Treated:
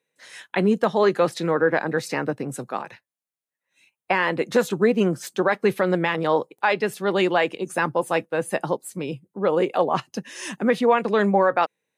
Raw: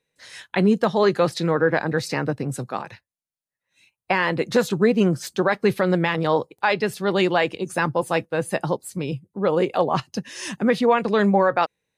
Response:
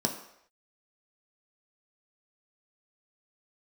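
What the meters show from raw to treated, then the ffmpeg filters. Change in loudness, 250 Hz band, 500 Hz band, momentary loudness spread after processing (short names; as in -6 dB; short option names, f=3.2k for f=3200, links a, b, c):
-1.0 dB, -2.0 dB, 0.0 dB, 11 LU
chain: -af "highpass=200,equalizer=f=4.6k:t=o:w=0.65:g=-5.5"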